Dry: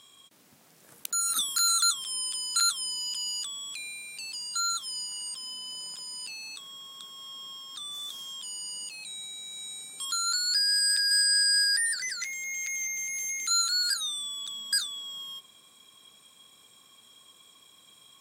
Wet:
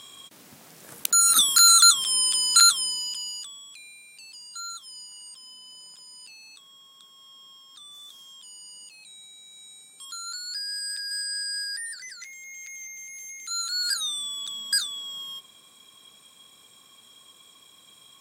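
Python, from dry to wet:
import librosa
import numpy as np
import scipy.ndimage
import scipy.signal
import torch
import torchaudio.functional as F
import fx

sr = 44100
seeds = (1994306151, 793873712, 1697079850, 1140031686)

y = fx.gain(x, sr, db=fx.line((2.61, 9.5), (3.18, 0.0), (3.7, -7.5), (13.43, -7.5), (13.98, 3.0)))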